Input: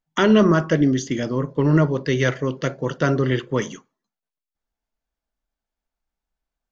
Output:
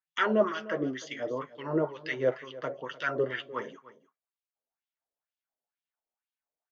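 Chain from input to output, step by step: flange 0.76 Hz, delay 6.4 ms, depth 3.1 ms, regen -31%; LFO band-pass sine 2.1 Hz 510–3300 Hz; echo 0.301 s -18 dB; gain +3 dB

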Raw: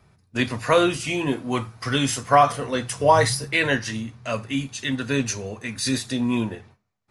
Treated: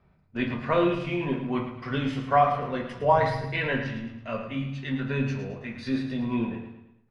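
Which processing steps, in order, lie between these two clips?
air absorption 340 m; feedback echo 0.109 s, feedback 43%, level -9 dB; on a send at -3 dB: reverb RT60 0.40 s, pre-delay 4 ms; on the sum: gain -5.5 dB

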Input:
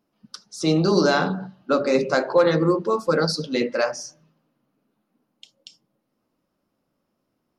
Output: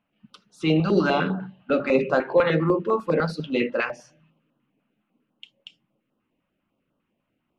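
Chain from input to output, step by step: resonant high shelf 3800 Hz -11.5 dB, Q 3; stepped notch 10 Hz 370–2200 Hz

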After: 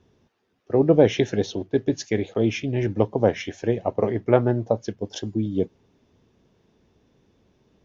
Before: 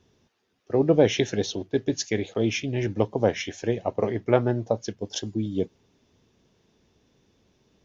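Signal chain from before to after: high shelf 2800 Hz -9.5 dB; gain +3 dB

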